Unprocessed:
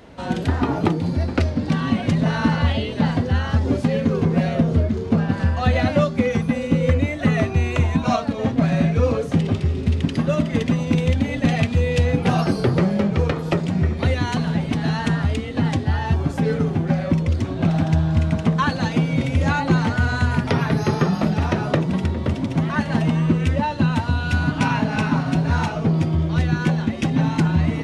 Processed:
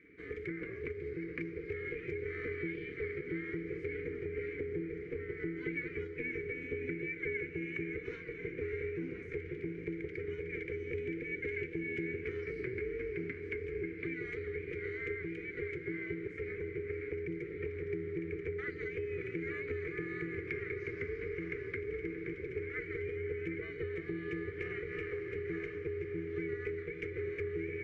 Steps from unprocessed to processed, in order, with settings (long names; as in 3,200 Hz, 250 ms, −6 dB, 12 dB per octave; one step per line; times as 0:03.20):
drawn EQ curve 100 Hz 0 dB, 200 Hz +12 dB, 330 Hz −15 dB, 570 Hz −15 dB, 1,900 Hz +12 dB, 3,000 Hz −17 dB, 6,200 Hz −5 dB
ring modulation 250 Hz
formant filter i
downward compressor 2.5 to 1, threshold −39 dBFS, peak gain reduction 8 dB
feedback delay with all-pass diffusion 637 ms, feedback 64%, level −10 dB
level +1 dB